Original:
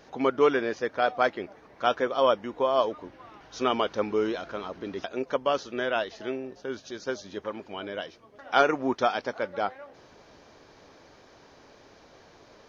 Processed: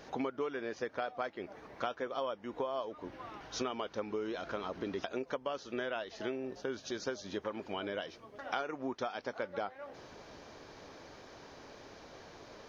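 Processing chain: compression 10:1, threshold -35 dBFS, peak gain reduction 20 dB; trim +1.5 dB

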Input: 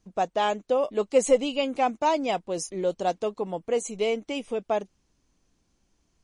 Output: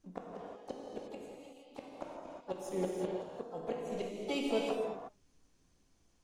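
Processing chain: inverted gate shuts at -20 dBFS, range -33 dB; gated-style reverb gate 390 ms flat, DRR -2.5 dB; harmony voices +4 st -16 dB, +7 st -9 dB; trim -6 dB

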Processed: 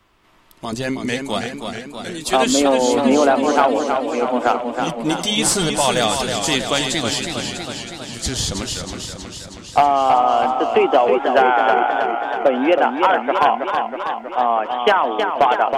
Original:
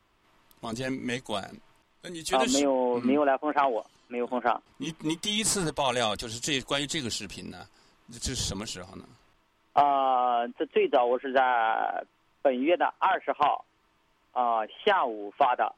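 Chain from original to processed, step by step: hard clipper -14.5 dBFS, distortion -25 dB; modulated delay 321 ms, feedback 67%, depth 71 cents, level -6 dB; trim +8.5 dB

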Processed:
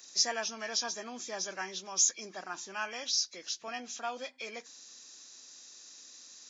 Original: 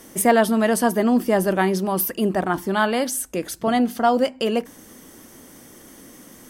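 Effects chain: knee-point frequency compression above 1.6 kHz 1.5:1; differentiator

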